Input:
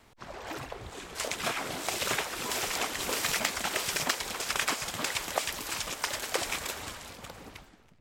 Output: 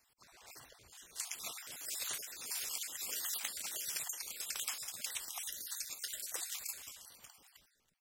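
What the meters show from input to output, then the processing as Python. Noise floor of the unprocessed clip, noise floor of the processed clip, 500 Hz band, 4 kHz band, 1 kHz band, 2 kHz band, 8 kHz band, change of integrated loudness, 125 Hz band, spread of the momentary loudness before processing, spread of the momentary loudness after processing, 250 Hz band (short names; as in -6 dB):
-59 dBFS, -75 dBFS, -23.0 dB, -10.5 dB, -20.5 dB, -16.0 dB, -5.0 dB, -8.5 dB, under -20 dB, 14 LU, 17 LU, -24.0 dB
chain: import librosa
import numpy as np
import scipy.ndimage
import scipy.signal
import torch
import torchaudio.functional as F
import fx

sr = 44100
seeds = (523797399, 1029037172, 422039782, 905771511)

y = fx.spec_dropout(x, sr, seeds[0], share_pct=39)
y = F.preemphasis(torch.from_numpy(y), 0.9).numpy()
y = y * librosa.db_to_amplitude(-2.5)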